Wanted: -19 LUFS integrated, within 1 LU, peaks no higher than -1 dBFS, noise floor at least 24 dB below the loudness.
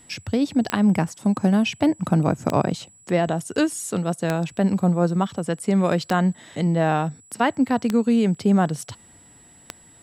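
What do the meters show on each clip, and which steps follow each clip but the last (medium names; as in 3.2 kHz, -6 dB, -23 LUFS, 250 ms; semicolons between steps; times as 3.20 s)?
clicks found 6; steady tone 7.8 kHz; tone level -50 dBFS; loudness -22.0 LUFS; peak level -5.0 dBFS; loudness target -19.0 LUFS
-> de-click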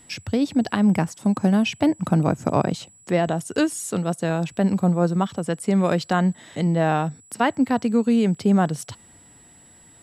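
clicks found 0; steady tone 7.8 kHz; tone level -50 dBFS
-> band-stop 7.8 kHz, Q 30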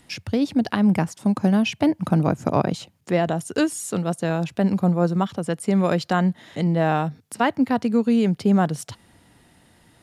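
steady tone not found; loudness -22.0 LUFS; peak level -5.0 dBFS; loudness target -19.0 LUFS
-> trim +3 dB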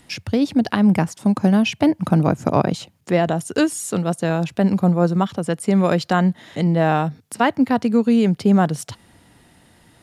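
loudness -19.0 LUFS; peak level -2.0 dBFS; noise floor -55 dBFS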